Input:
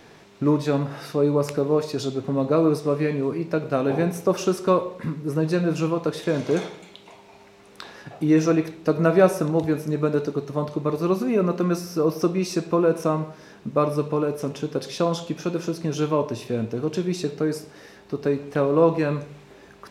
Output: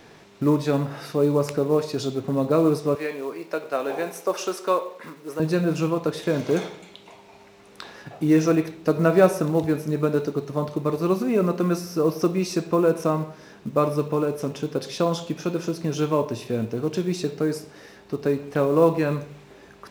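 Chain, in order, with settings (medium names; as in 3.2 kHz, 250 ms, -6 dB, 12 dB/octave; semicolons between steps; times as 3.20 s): short-mantissa float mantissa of 4-bit; 2.95–5.40 s: high-pass 490 Hz 12 dB/octave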